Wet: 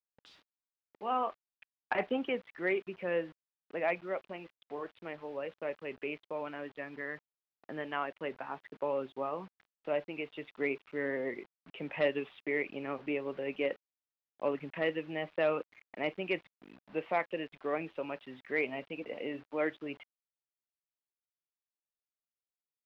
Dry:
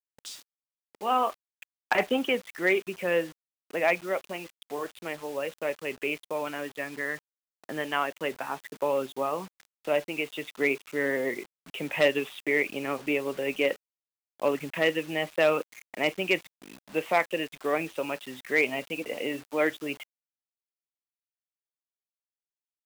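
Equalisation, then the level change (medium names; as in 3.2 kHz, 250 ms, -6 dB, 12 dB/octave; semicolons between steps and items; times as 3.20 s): distance through air 350 m; -5.5 dB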